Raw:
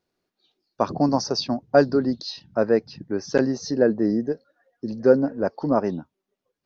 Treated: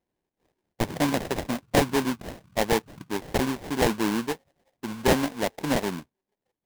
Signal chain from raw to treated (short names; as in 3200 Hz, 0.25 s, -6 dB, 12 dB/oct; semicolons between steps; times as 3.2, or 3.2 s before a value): sample-rate reducer 1300 Hz, jitter 20%; wrapped overs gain 8.5 dB; gain -4 dB